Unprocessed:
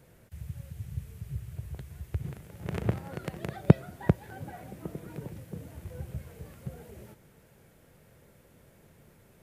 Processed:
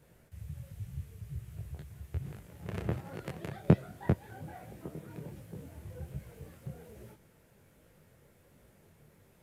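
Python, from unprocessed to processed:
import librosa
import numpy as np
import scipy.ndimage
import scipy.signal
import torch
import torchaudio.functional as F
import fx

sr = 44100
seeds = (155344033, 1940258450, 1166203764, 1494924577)

y = fx.detune_double(x, sr, cents=44)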